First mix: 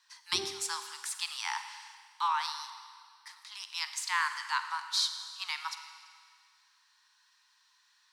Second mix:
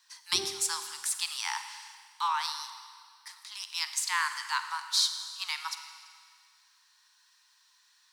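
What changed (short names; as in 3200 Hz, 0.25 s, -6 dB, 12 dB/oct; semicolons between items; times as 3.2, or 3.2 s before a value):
background: send +10.5 dB; master: add high shelf 6200 Hz +10 dB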